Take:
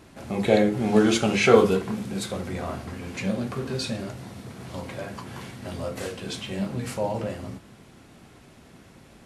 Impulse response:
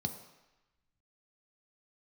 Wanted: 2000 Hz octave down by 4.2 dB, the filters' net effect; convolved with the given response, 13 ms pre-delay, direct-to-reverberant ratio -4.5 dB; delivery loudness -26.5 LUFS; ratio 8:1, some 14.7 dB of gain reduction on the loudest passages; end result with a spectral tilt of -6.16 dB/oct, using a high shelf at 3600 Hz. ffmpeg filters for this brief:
-filter_complex "[0:a]equalizer=f=2k:t=o:g=-7.5,highshelf=f=3.6k:g=6,acompressor=threshold=-26dB:ratio=8,asplit=2[a][b];[1:a]atrim=start_sample=2205,adelay=13[c];[b][c]afir=irnorm=-1:irlink=0,volume=3.5dB[d];[a][d]amix=inputs=2:normalize=0,volume=-6.5dB"

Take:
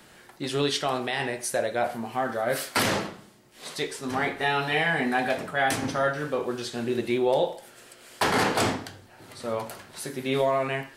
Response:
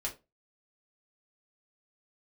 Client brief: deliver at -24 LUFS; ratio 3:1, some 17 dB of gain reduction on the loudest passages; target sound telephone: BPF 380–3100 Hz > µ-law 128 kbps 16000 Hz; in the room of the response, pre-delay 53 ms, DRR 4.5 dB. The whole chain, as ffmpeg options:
-filter_complex "[0:a]acompressor=threshold=-44dB:ratio=3,asplit=2[a][b];[1:a]atrim=start_sample=2205,adelay=53[c];[b][c]afir=irnorm=-1:irlink=0,volume=-6dB[d];[a][d]amix=inputs=2:normalize=0,highpass=380,lowpass=3.1k,volume=19dB" -ar 16000 -c:a pcm_mulaw

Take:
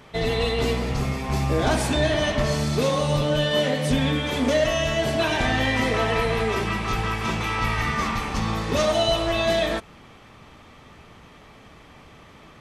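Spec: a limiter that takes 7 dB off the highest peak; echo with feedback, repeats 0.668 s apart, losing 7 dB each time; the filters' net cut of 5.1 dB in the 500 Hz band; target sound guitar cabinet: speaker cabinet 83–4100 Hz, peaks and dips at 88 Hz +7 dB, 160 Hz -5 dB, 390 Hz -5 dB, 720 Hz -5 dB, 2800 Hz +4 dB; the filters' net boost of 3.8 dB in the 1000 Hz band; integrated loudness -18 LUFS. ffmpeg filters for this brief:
-af "equalizer=f=500:t=o:g=-6.5,equalizer=f=1k:t=o:g=8,alimiter=limit=-15dB:level=0:latency=1,highpass=83,equalizer=f=88:t=q:w=4:g=7,equalizer=f=160:t=q:w=4:g=-5,equalizer=f=390:t=q:w=4:g=-5,equalizer=f=720:t=q:w=4:g=-5,equalizer=f=2.8k:t=q:w=4:g=4,lowpass=f=4.1k:w=0.5412,lowpass=f=4.1k:w=1.3066,aecho=1:1:668|1336|2004|2672|3340:0.447|0.201|0.0905|0.0407|0.0183,volume=6.5dB"

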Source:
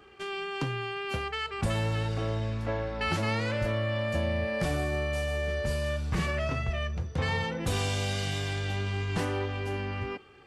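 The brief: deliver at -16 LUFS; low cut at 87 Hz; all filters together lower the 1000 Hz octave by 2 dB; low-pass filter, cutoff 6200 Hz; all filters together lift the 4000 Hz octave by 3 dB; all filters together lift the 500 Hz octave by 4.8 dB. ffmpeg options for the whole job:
-af "highpass=87,lowpass=6.2k,equalizer=f=500:t=o:g=7.5,equalizer=f=1k:t=o:g=-5.5,equalizer=f=4k:t=o:g=5,volume=13.5dB"

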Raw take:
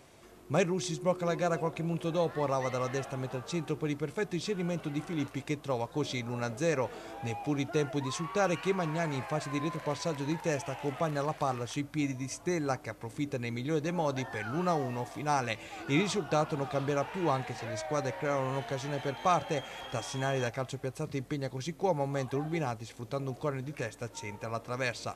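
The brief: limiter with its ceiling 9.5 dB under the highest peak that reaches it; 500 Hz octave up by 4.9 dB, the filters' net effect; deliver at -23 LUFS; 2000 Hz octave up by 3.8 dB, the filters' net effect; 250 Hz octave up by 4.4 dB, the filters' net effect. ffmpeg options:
-af "equalizer=f=250:t=o:g=4.5,equalizer=f=500:t=o:g=4.5,equalizer=f=2k:t=o:g=4.5,volume=9dB,alimiter=limit=-11.5dB:level=0:latency=1"

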